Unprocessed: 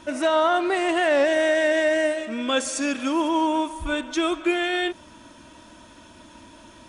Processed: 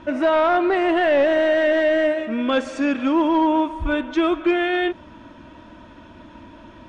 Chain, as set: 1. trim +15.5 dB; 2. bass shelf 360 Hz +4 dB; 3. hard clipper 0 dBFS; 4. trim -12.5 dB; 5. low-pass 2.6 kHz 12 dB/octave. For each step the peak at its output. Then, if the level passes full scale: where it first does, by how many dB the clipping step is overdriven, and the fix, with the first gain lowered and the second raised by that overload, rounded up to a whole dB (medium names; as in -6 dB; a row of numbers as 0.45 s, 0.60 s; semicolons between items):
+6.0 dBFS, +6.0 dBFS, 0.0 dBFS, -12.5 dBFS, -12.0 dBFS; step 1, 6.0 dB; step 1 +9.5 dB, step 4 -6.5 dB